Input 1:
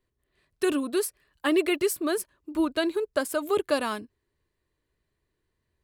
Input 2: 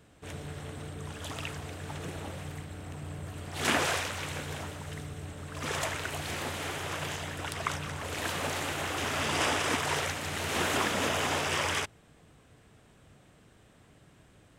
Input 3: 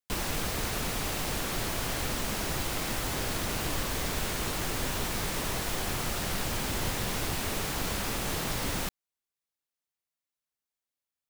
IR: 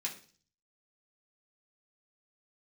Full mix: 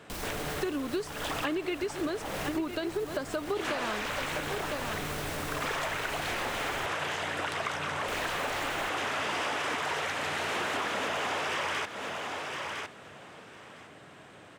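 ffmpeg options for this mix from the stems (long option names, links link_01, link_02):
-filter_complex "[0:a]dynaudnorm=framelen=220:gausssize=7:maxgain=11.5dB,lowpass=frequency=6800:width=0.5412,lowpass=frequency=6800:width=1.3066,volume=-2dB,asplit=2[link_01][link_02];[link_02]volume=-15dB[link_03];[1:a]asplit=2[link_04][link_05];[link_05]highpass=frequency=720:poles=1,volume=19dB,asoftclip=type=tanh:threshold=-12.5dB[link_06];[link_04][link_06]amix=inputs=2:normalize=0,lowpass=frequency=2000:poles=1,volume=-6dB,highpass=90,volume=1.5dB,asplit=2[link_07][link_08];[link_08]volume=-14dB[link_09];[2:a]alimiter=level_in=6dB:limit=-24dB:level=0:latency=1,volume=-6dB,volume=1.5dB,asplit=3[link_10][link_11][link_12];[link_10]atrim=end=6.86,asetpts=PTS-STARTPTS,afade=type=out:start_time=6.856:duration=0.004:curve=hsin[link_13];[link_11]atrim=start=6.86:end=8.08,asetpts=PTS-STARTPTS,volume=0[link_14];[link_12]atrim=start=8.08,asetpts=PTS-STARTPTS,afade=type=in:duration=0.004:curve=hsin[link_15];[link_13][link_14][link_15]concat=n=3:v=0:a=1[link_16];[link_01][link_16]amix=inputs=2:normalize=0,alimiter=limit=-10.5dB:level=0:latency=1:release=239,volume=0dB[link_17];[link_03][link_09]amix=inputs=2:normalize=0,aecho=0:1:1008|2016|3024:1|0.15|0.0225[link_18];[link_07][link_17][link_18]amix=inputs=3:normalize=0,acompressor=threshold=-30dB:ratio=6"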